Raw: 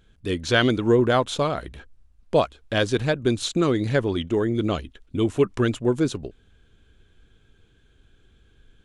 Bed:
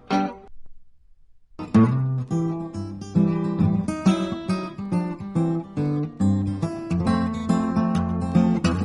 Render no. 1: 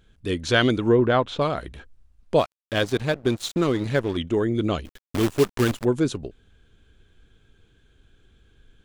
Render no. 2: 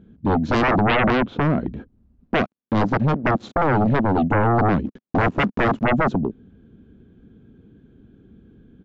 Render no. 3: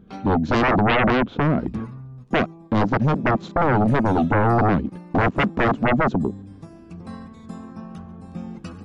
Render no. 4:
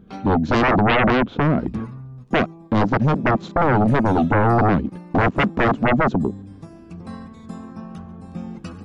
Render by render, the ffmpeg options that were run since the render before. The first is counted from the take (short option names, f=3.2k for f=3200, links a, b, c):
-filter_complex "[0:a]asplit=3[a][b][c];[a]afade=t=out:st=0.88:d=0.02[d];[b]lowpass=3.3k,afade=t=in:st=0.88:d=0.02,afade=t=out:st=1.4:d=0.02[e];[c]afade=t=in:st=1.4:d=0.02[f];[d][e][f]amix=inputs=3:normalize=0,asettb=1/sr,asplit=3[g][h][i];[g]atrim=end=2.394[j];[h]atrim=start=2.39:end=4.17,asetpts=PTS-STARTPTS,afade=t=in:d=0.004:c=qsin,afade=t=out:st=1.776:d=0.004:c=qsin,aeval=exprs='sgn(val(0))*max(abs(val(0))-0.0168,0)':c=same[k];[i]atrim=start=4.166[l];[j][k]acrossfade=d=0.004:c1=hsin:c2=qsin[m];[m][l]acrossfade=d=0.004:c1=qsin:c2=hsin,asplit=3[n][o][p];[n]afade=t=out:st=4.84:d=0.02[q];[o]acrusher=bits=5:dc=4:mix=0:aa=0.000001,afade=t=in:st=4.84:d=0.02,afade=t=out:st=5.83:d=0.02[r];[p]afade=t=in:st=5.83:d=0.02[s];[q][r][s]amix=inputs=3:normalize=0"
-af "bandpass=f=220:t=q:w=2.4:csg=0,aresample=16000,aeval=exprs='0.188*sin(PI/2*7.08*val(0)/0.188)':c=same,aresample=44100"
-filter_complex "[1:a]volume=-15dB[a];[0:a][a]amix=inputs=2:normalize=0"
-af "volume=1.5dB"